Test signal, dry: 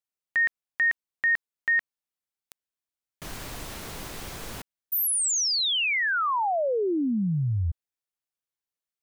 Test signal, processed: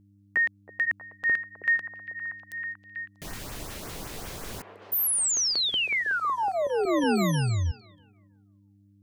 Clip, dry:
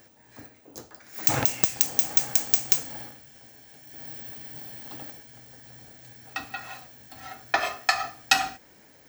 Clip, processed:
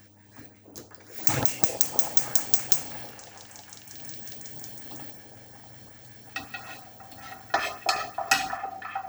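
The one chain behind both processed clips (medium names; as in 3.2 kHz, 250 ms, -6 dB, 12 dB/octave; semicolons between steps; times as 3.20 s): LFO notch saw up 5.4 Hz 390–4400 Hz; repeats whose band climbs or falls 320 ms, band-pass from 510 Hz, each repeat 0.7 oct, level -2.5 dB; mains buzz 100 Hz, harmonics 3, -59 dBFS -4 dB/octave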